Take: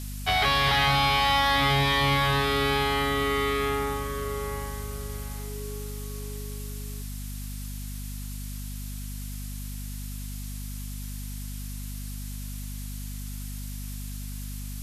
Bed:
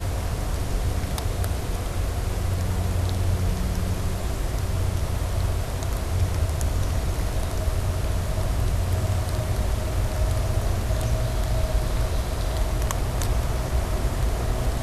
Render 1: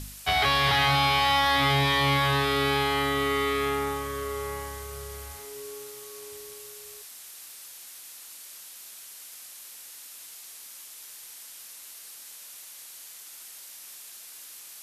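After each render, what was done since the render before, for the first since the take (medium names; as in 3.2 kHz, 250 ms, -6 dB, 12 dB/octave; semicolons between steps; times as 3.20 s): de-hum 50 Hz, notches 5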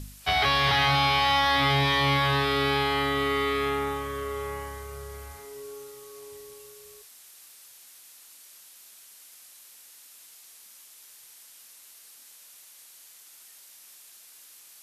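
noise print and reduce 6 dB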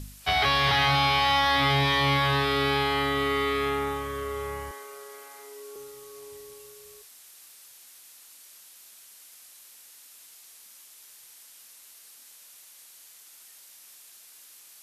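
4.71–5.76 s: Bessel high-pass 390 Hz, order 6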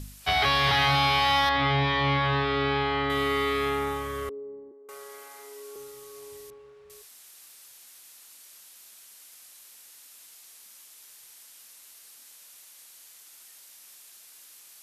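1.49–3.10 s: distance through air 200 m; 4.29–4.89 s: Butterworth band-pass 320 Hz, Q 1.9; 6.50–6.90 s: low-pass 1.7 kHz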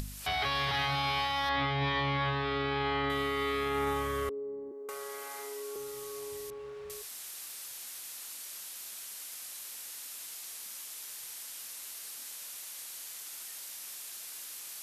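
upward compressor, threshold -35 dBFS; peak limiter -22.5 dBFS, peak gain reduction 10.5 dB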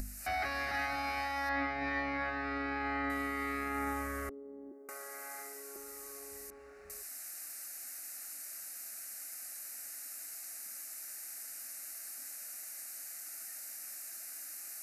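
static phaser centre 670 Hz, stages 8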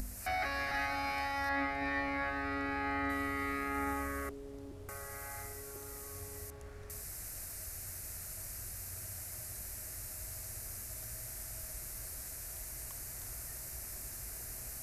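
add bed -27 dB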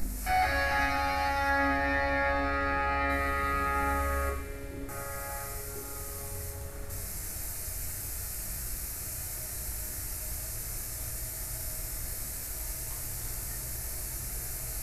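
feedback echo behind a high-pass 90 ms, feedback 84%, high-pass 2 kHz, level -9 dB; simulated room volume 490 m³, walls furnished, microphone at 4.2 m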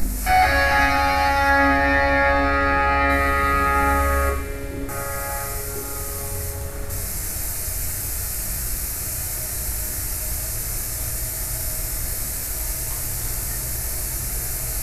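trim +10.5 dB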